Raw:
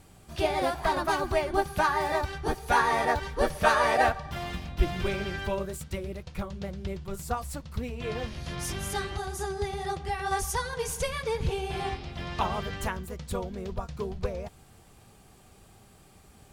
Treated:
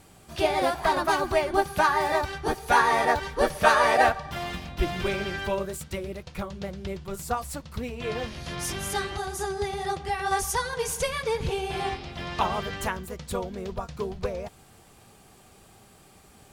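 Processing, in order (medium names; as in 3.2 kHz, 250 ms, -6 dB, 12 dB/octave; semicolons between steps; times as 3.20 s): bass shelf 140 Hz -7.5 dB; trim +3.5 dB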